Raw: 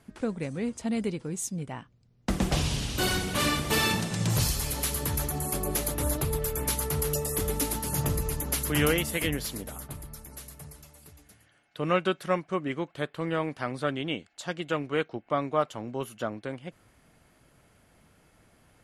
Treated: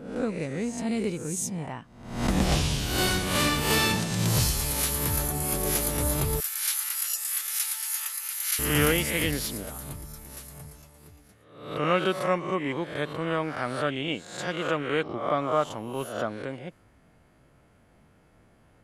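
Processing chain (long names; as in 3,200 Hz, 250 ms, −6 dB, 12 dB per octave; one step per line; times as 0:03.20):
peak hold with a rise ahead of every peak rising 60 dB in 0.72 s
0:06.40–0:08.59: high-pass filter 1,400 Hz 24 dB per octave
one half of a high-frequency compander decoder only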